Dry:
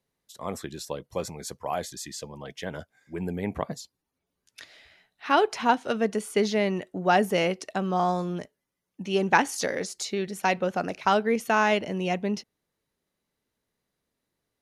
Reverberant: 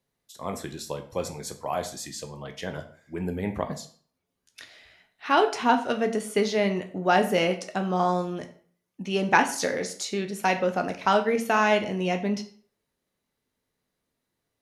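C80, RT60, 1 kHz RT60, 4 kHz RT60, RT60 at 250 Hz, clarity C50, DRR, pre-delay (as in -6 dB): 15.5 dB, 0.50 s, 0.50 s, 0.40 s, 0.50 s, 12.5 dB, 6.0 dB, 10 ms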